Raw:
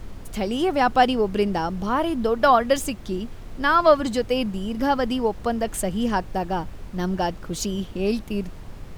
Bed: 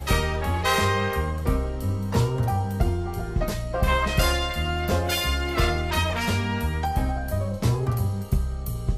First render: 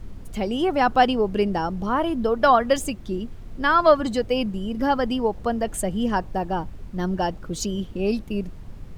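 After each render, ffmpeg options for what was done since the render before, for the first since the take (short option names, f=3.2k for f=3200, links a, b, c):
-af "afftdn=nr=7:nf=-38"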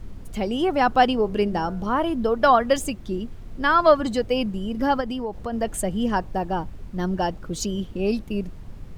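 -filter_complex "[0:a]asettb=1/sr,asplit=3[a][b][c];[a]atrim=end=1.134[d];[b]atrim=start=1.13:end=1.86,asetpts=PTS-STARTPTS,afade=t=in:d=0.004:c=qsin,afade=t=out:st=0.726:d=0.004:c=qsin,bandreject=f=98.39:t=h:w=4,bandreject=f=196.78:t=h:w=4,bandreject=f=295.17:t=h:w=4,bandreject=f=393.56:t=h:w=4,bandreject=f=491.95:t=h:w=4,bandreject=f=590.34:t=h:w=4,bandreject=f=688.73:t=h:w=4,bandreject=f=787.12:t=h:w=4,bandreject=f=885.51:t=h:w=4,bandreject=f=983.9:t=h:w=4,bandreject=f=1.08229k:t=h:w=4,bandreject=f=1.18068k:t=h:w=4,bandreject=f=1.27907k:t=h:w=4,bandreject=f=1.37746k:t=h:w=4,bandreject=f=1.47585k:t=h:w=4,bandreject=f=1.57424k:t=h:w=4,bandreject=f=1.67263k:t=h:w=4[e];[c]atrim=start=1.856[f];[d][e]acrossfade=d=0.004:c1=hsin:c2=qsin[g];[g][f]acrossfade=d=0.004:c1=qsin:c2=hsin,asplit=3[h][i][j];[h]afade=t=out:st=5:d=0.02[k];[i]acompressor=threshold=-26dB:ratio=3:attack=3.2:release=140:knee=1:detection=peak,afade=t=in:st=5:d=0.02,afade=t=out:st=5.52:d=0.02[l];[j]afade=t=in:st=5.52:d=0.02[m];[k][l][m]amix=inputs=3:normalize=0"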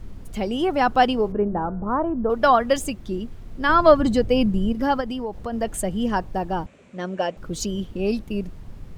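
-filter_complex "[0:a]asettb=1/sr,asplit=3[a][b][c];[a]atrim=end=1.324[d];[b]atrim=start=1.32:end=2.3,asetpts=PTS-STARTPTS,afade=t=in:d=0.004:c=qsin,afade=t=out:st=0.976:d=0.004:c=qsin,lowpass=f=1.4k:w=0.5412,lowpass=f=1.4k:w=1.3066[e];[c]atrim=start=2.296[f];[d][e]acrossfade=d=0.004:c1=hsin:c2=qsin[g];[g][f]acrossfade=d=0.004:c1=qsin:c2=hsin,asettb=1/sr,asplit=3[h][i][j];[h]atrim=end=3.694[k];[i]atrim=start=3.69:end=4.73,asetpts=PTS-STARTPTS,afade=t=in:d=0.004:c=qsin,afade=t=out:st=1.036:d=0.004:c=qsin,lowshelf=f=340:g=9[l];[j]atrim=start=4.726[m];[k][l]acrossfade=d=0.004:c1=hsin:c2=qsin[n];[n][m]acrossfade=d=0.004:c1=qsin:c2=hsin,asettb=1/sr,asplit=3[o][p][q];[o]atrim=end=6.664[r];[p]atrim=start=6.66:end=7.37,asetpts=PTS-STARTPTS,afade=t=in:d=0.004:c=qsin,afade=t=out:st=0.706:d=0.004:c=qsin,highpass=250,equalizer=f=330:t=q:w=4:g=-5,equalizer=f=560:t=q:w=4:g=7,equalizer=f=860:t=q:w=4:g=-6,equalizer=f=2.4k:t=q:w=4:g=8,equalizer=f=4.9k:t=q:w=4:g=-8,equalizer=f=7.4k:t=q:w=4:g=5,lowpass=f=8.4k:w=0.5412,lowpass=f=8.4k:w=1.3066[s];[q]atrim=start=7.366[t];[r][s]acrossfade=d=0.004:c1=hsin:c2=qsin[u];[u][t]acrossfade=d=0.004:c1=qsin:c2=hsin"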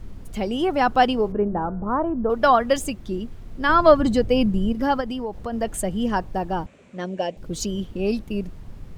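-filter_complex "[0:a]asettb=1/sr,asplit=3[a][b][c];[a]atrim=end=7.044[d];[b]atrim=start=7.04:end=7.5,asetpts=PTS-STARTPTS,afade=t=in:d=0.004:c=qsin,afade=t=out:st=0.456:d=0.004:c=qsin,equalizer=f=1.3k:w=2.3:g=-13.5[e];[c]atrim=start=7.496[f];[d][e]acrossfade=d=0.004:c1=hsin:c2=qsin[g];[g][f]acrossfade=d=0.004:c1=qsin:c2=hsin"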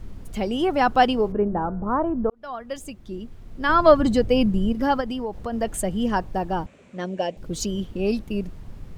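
-filter_complex "[0:a]asplit=2[a][b];[a]atrim=end=2.3,asetpts=PTS-STARTPTS,afade=t=out:st=2.296:d=0.004:c=hsin[c];[b]atrim=start=2.3,asetpts=PTS-STARTPTS,afade=t=in:d=1.67[d];[c][d]concat=n=2:v=0:a=1"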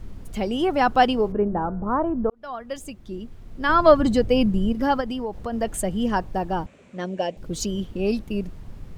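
-af anull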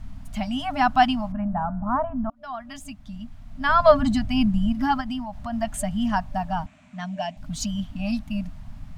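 -af "afftfilt=real='re*(1-between(b*sr/4096,290,590))':imag='im*(1-between(b*sr/4096,290,590))':win_size=4096:overlap=0.75,highshelf=f=11k:g=-6"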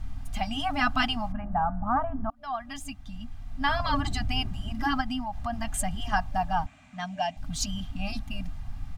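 -af "afftfilt=real='re*lt(hypot(re,im),0.631)':imag='im*lt(hypot(re,im),0.631)':win_size=1024:overlap=0.75,aecho=1:1:2.5:0.53"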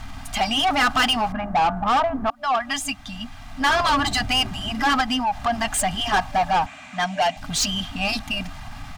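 -filter_complex "[0:a]asplit=2[a][b];[b]volume=30.5dB,asoftclip=hard,volume=-30.5dB,volume=-10dB[c];[a][c]amix=inputs=2:normalize=0,asplit=2[d][e];[e]highpass=f=720:p=1,volume=21dB,asoftclip=type=tanh:threshold=-11.5dB[f];[d][f]amix=inputs=2:normalize=0,lowpass=f=7.3k:p=1,volume=-6dB"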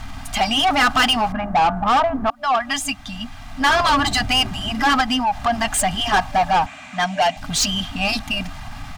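-af "volume=3dB"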